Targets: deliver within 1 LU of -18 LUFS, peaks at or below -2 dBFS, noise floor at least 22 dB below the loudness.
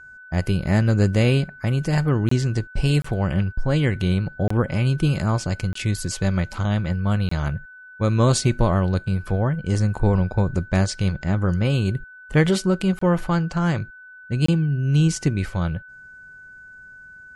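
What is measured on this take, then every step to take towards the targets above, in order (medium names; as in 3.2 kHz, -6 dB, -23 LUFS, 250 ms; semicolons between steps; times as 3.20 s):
dropouts 7; longest dropout 24 ms; steady tone 1.5 kHz; tone level -41 dBFS; loudness -22.0 LUFS; peak level -5.0 dBFS; loudness target -18.0 LUFS
-> interpolate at 2.29/3.02/4.48/5.73/7.29/12.99/14.46 s, 24 ms; band-stop 1.5 kHz, Q 30; trim +4 dB; peak limiter -2 dBFS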